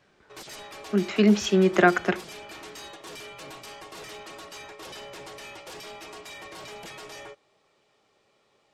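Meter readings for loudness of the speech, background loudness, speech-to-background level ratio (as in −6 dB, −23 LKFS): −22.5 LKFS, −41.5 LKFS, 19.0 dB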